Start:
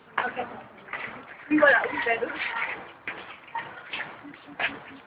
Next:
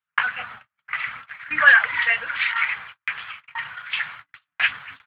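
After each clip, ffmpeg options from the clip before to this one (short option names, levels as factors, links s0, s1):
-af "firequalizer=gain_entry='entry(120,0);entry(300,-21);entry(1300,8)':delay=0.05:min_phase=1,agate=range=0.01:threshold=0.0126:ratio=16:detection=peak,areverse,acompressor=mode=upward:threshold=0.0112:ratio=2.5,areverse"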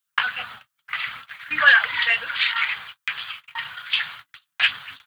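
-af "aexciter=amount=4.7:drive=5.2:freq=3100,volume=0.891"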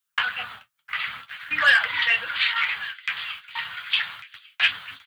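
-filter_complex "[0:a]flanger=delay=9.4:depth=3.5:regen=-45:speed=0.47:shape=triangular,acrossover=split=270|810|1600[s0][s1][s2][s3];[s2]asoftclip=type=tanh:threshold=0.0355[s4];[s3]aecho=1:1:1147:0.178[s5];[s0][s1][s4][s5]amix=inputs=4:normalize=0,volume=1.5"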